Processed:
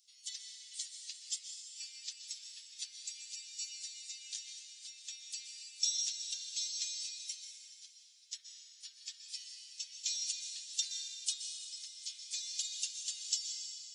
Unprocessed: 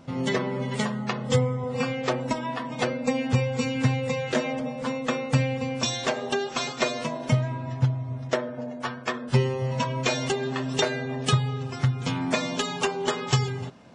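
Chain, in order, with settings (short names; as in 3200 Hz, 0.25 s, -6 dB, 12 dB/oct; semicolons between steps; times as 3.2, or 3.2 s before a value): inverse Chebyshev high-pass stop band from 790 Hz, stop band 80 dB; on a send: reverb RT60 2.8 s, pre-delay 0.117 s, DRR 3 dB; on the sum: gain -1 dB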